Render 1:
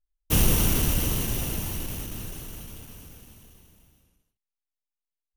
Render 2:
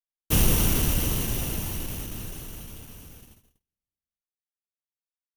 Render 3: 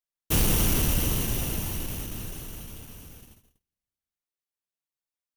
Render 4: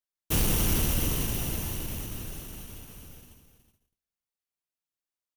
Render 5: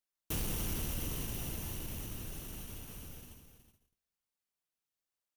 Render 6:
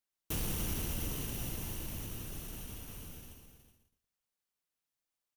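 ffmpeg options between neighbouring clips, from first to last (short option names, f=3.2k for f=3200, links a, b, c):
-af "agate=range=-38dB:threshold=-48dB:ratio=16:detection=peak"
-af "aeval=exprs='0.15*(abs(mod(val(0)/0.15+3,4)-2)-1)':c=same"
-af "aecho=1:1:370:0.299,volume=-2.5dB"
-af "acompressor=threshold=-43dB:ratio=2"
-af "aecho=1:1:116:0.355"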